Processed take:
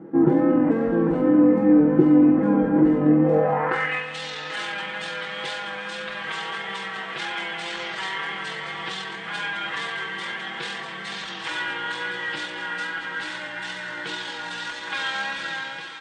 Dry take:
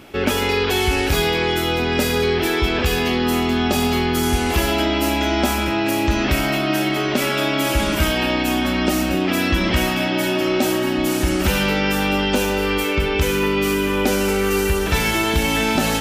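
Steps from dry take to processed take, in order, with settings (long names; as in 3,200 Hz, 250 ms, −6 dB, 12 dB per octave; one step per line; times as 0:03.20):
fade-out on the ending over 0.65 s
in parallel at −10 dB: soft clipping −22 dBFS, distortion −9 dB
on the sum: bass and treble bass −9 dB, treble −14 dB
comb filter 3.8 ms, depth 97%
hum removal 68.01 Hz, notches 5
pitch shifter −8.5 semitones
on a send: feedback delay with all-pass diffusion 954 ms, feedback 65%, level −11 dB
on the sum: tape wow and flutter 21 cents
band-pass filter sweep 310 Hz → 3,500 Hz, 0:03.22–0:04.08
level +6.5 dB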